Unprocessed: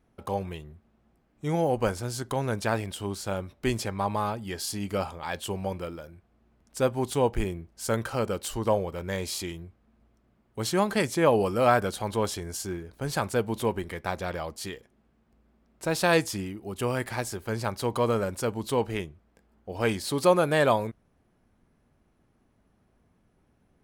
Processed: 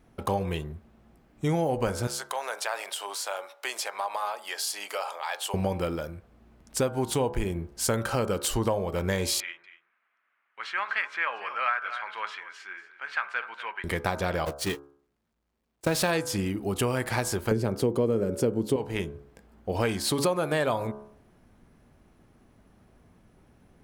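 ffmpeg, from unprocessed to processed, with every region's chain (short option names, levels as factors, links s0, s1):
-filter_complex "[0:a]asettb=1/sr,asplit=3[s0][s1][s2];[s0]atrim=end=2.074[s3];[s1]atrim=start=2.07:end=5.54,asetpts=PTS-STARTPTS,afade=t=in:d=0.004:c=qsin,afade=t=out:st=3.466:d=0.004:c=qsin,highpass=f=610:w=0.5412,highpass=f=610:w=1.3066,acompressor=threshold=0.01:ratio=2:attack=3.2:release=140:knee=1:detection=peak[s4];[s2]atrim=start=5.536[s5];[s3][s4]acrossfade=d=0.004:c1=hsin:c2=qsin[s6];[s6][s5]acrossfade=d=0.004:c1=qsin:c2=hsin,asettb=1/sr,asplit=3[s7][s8][s9];[s7]atrim=end=9.404[s10];[s8]atrim=start=9.4:end=13.84,asetpts=PTS-STARTPTS,afade=t=in:d=0.004:c=qsin,afade=t=out:st=4.436:d=0.004:c=qsin,asuperpass=centerf=1800:order=4:qfactor=1.4,aecho=1:1:237:0.168,atrim=end_sample=195804[s11];[s9]atrim=start=13.836[s12];[s10][s11]acrossfade=d=0.004:c1=hsin:c2=qsin[s13];[s13][s12]acrossfade=d=0.004:c1=qsin:c2=hsin,asettb=1/sr,asplit=3[s14][s15][s16];[s14]atrim=end=14.454[s17];[s15]atrim=start=14.45:end=16.11,asetpts=PTS-STARTPTS,afade=t=in:d=0.004:c=qsin,afade=t=out:st=1.656:d=0.004:c=qsin,aeval=exprs='val(0)+0.5*0.0299*sgn(val(0))':c=same,agate=range=0.00282:threshold=0.0282:ratio=16:release=100:detection=peak[s18];[s16]atrim=start=16.106[s19];[s17][s18]acrossfade=d=0.004:c1=hsin:c2=qsin[s20];[s20][s19]acrossfade=d=0.004:c1=qsin:c2=hsin,asettb=1/sr,asplit=3[s21][s22][s23];[s21]atrim=end=17.514[s24];[s22]atrim=start=17.51:end=18.76,asetpts=PTS-STARTPTS,afade=t=in:d=0.004:c=qsin,afade=t=out:st=1.246:d=0.004:c=qsin,highpass=110,lowshelf=f=610:t=q:w=1.5:g=11,bandreject=f=3900:w=17[s25];[s23]atrim=start=18.756[s26];[s24][s25]acrossfade=d=0.004:c1=hsin:c2=qsin[s27];[s27][s26]acrossfade=d=0.004:c1=qsin:c2=hsin,bandreject=f=70.82:t=h:w=4,bandreject=f=141.64:t=h:w=4,bandreject=f=212.46:t=h:w=4,bandreject=f=283.28:t=h:w=4,bandreject=f=354.1:t=h:w=4,bandreject=f=424.92:t=h:w=4,bandreject=f=495.74:t=h:w=4,bandreject=f=566.56:t=h:w=4,bandreject=f=637.38:t=h:w=4,bandreject=f=708.2:t=h:w=4,bandreject=f=779.02:t=h:w=4,bandreject=f=849.84:t=h:w=4,bandreject=f=920.66:t=h:w=4,bandreject=f=991.48:t=h:w=4,bandreject=f=1062.3:t=h:w=4,bandreject=f=1133.12:t=h:w=4,bandreject=f=1203.94:t=h:w=4,bandreject=f=1274.76:t=h:w=4,bandreject=f=1345.58:t=h:w=4,bandreject=f=1416.4:t=h:w=4,bandreject=f=1487.22:t=h:w=4,bandreject=f=1558.04:t=h:w=4,bandreject=f=1628.86:t=h:w=4,acompressor=threshold=0.0251:ratio=6,volume=2.66"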